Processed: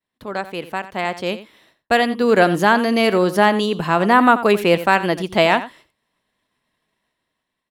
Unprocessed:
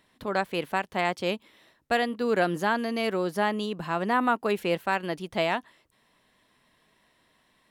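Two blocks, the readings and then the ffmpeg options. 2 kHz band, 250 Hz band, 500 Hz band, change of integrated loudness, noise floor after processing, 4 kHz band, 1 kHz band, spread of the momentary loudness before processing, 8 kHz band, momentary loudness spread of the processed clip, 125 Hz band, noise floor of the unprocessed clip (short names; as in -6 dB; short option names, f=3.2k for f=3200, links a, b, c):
+10.0 dB, +10.5 dB, +10.5 dB, +10.5 dB, -80 dBFS, +10.0 dB, +10.5 dB, 6 LU, +10.0 dB, 13 LU, +10.5 dB, -68 dBFS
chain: -filter_complex "[0:a]agate=range=-33dB:threshold=-54dB:ratio=3:detection=peak,dynaudnorm=f=690:g=5:m=12dB,asplit=2[a][b];[b]adelay=87.46,volume=-14dB,highshelf=f=4k:g=-1.97[c];[a][c]amix=inputs=2:normalize=0,volume=1dB"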